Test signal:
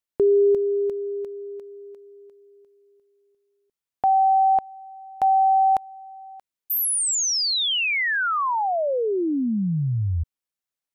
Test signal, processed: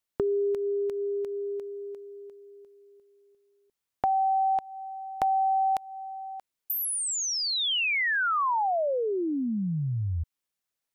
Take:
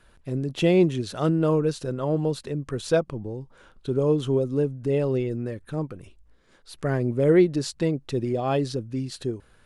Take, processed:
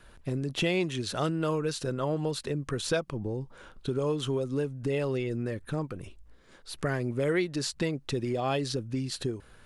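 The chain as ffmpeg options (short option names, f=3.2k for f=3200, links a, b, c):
-filter_complex "[0:a]acrossover=split=980|2200[a][b][c];[a]acompressor=threshold=-32dB:ratio=4[d];[b]acompressor=threshold=-38dB:ratio=4[e];[c]acompressor=threshold=-34dB:ratio=4[f];[d][e][f]amix=inputs=3:normalize=0,volume=3dB"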